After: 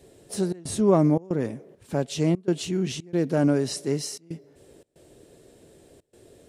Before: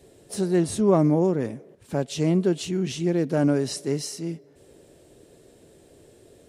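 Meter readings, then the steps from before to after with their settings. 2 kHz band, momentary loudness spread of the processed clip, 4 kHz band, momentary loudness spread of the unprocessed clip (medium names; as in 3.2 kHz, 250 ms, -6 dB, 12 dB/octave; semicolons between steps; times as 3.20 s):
-1.0 dB, 15 LU, 0.0 dB, 13 LU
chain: trance gate "xxxx.xxxx.xxxx" 115 bpm -24 dB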